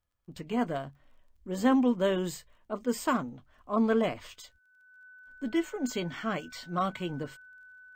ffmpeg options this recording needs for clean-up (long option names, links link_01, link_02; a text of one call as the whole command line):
ffmpeg -i in.wav -af "adeclick=threshold=4,bandreject=frequency=1500:width=30" out.wav